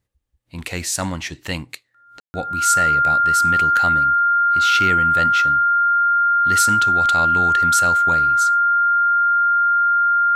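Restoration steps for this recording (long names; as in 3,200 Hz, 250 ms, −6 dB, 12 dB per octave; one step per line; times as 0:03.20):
notch filter 1,400 Hz, Q 30
ambience match 0:02.20–0:02.34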